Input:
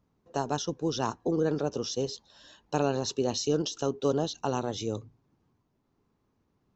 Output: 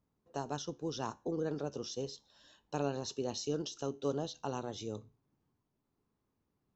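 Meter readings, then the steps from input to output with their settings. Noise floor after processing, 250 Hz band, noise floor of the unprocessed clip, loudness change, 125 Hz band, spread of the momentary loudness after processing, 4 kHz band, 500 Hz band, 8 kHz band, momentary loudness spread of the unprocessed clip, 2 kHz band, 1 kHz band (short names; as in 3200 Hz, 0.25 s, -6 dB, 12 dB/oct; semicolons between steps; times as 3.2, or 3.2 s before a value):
-83 dBFS, -8.5 dB, -75 dBFS, -8.5 dB, -8.0 dB, 7 LU, -8.5 dB, -8.5 dB, n/a, 7 LU, -8.5 dB, -8.5 dB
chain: resonator 71 Hz, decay 0.32 s, harmonics all, mix 40%; gain -5.5 dB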